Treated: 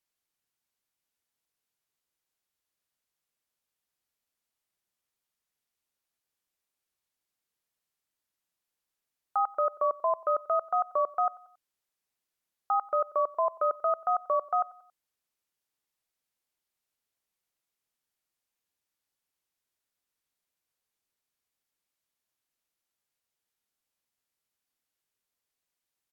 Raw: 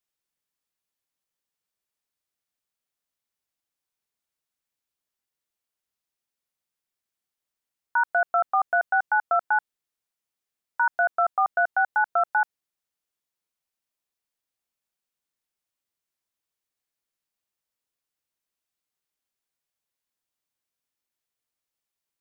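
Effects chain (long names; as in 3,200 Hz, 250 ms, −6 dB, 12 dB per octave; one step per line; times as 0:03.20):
brickwall limiter −19 dBFS, peak gain reduction 5 dB
speed change −15%
repeating echo 92 ms, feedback 47%, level −22 dB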